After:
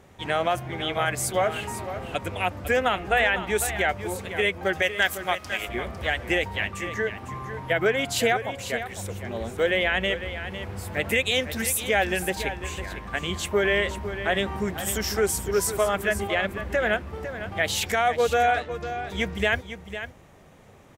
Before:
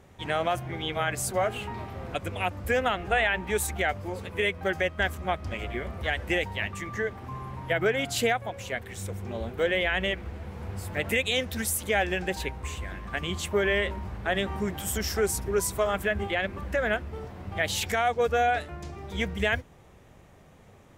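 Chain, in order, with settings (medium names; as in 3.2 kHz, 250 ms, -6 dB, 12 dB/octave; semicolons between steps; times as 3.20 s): 4.82–5.69 s: tilt EQ +3 dB/octave; 18.60–19.07 s: Chebyshev low-pass 4.3 kHz, order 2; bass shelf 140 Hz -4.5 dB; delay 503 ms -11 dB; trim +3 dB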